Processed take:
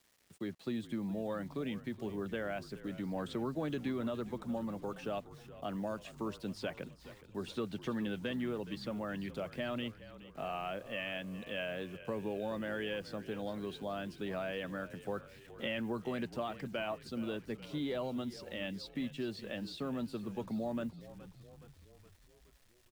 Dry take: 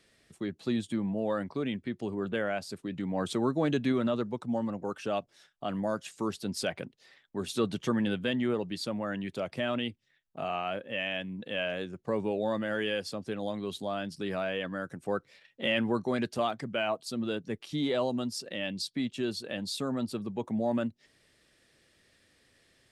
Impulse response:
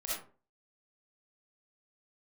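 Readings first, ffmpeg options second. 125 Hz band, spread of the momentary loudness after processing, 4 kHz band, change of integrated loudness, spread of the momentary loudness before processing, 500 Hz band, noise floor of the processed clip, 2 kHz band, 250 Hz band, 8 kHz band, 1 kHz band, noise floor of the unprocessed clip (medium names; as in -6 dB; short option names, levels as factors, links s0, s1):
-5.5 dB, 7 LU, -8.5 dB, -7.0 dB, 7 LU, -7.0 dB, -63 dBFS, -7.0 dB, -6.5 dB, -13.5 dB, -7.0 dB, -69 dBFS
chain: -filter_complex "[0:a]acrossover=split=160|3900[s0][s1][s2];[s0]acompressor=threshold=0.00708:ratio=4[s3];[s1]acompressor=threshold=0.0316:ratio=4[s4];[s2]acompressor=threshold=0.00112:ratio=4[s5];[s3][s4][s5]amix=inputs=3:normalize=0,acrusher=bits=9:mix=0:aa=0.000001,asplit=7[s6][s7][s8][s9][s10][s11][s12];[s7]adelay=419,afreqshift=-45,volume=0.168[s13];[s8]adelay=838,afreqshift=-90,volume=0.101[s14];[s9]adelay=1257,afreqshift=-135,volume=0.0603[s15];[s10]adelay=1676,afreqshift=-180,volume=0.0363[s16];[s11]adelay=2095,afreqshift=-225,volume=0.0219[s17];[s12]adelay=2514,afreqshift=-270,volume=0.013[s18];[s6][s13][s14][s15][s16][s17][s18]amix=inputs=7:normalize=0,volume=0.596"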